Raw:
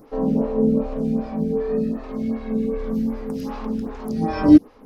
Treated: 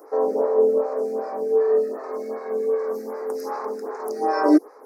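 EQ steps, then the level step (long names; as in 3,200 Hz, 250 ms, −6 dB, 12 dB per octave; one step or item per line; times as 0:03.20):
Chebyshev high-pass filter 370 Hz, order 4
Butterworth band-reject 3,100 Hz, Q 0.88
+6.0 dB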